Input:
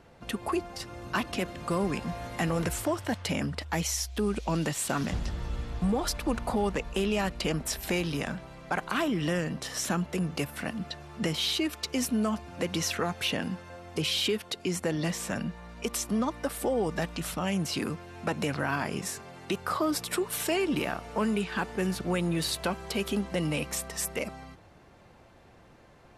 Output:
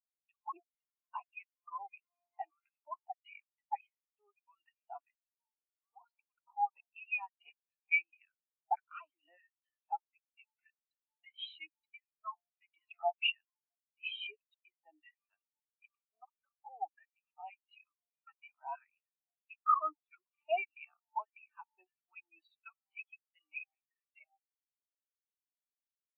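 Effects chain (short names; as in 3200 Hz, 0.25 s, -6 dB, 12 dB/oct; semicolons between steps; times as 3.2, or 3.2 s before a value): LFO high-pass saw down 1.6 Hz 760–1600 Hz; speaker cabinet 260–4100 Hz, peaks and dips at 310 Hz +8 dB, 500 Hz -7 dB, 1100 Hz -4 dB, 1600 Hz -7 dB, 2500 Hz +8 dB; spectral expander 4:1; gain -3.5 dB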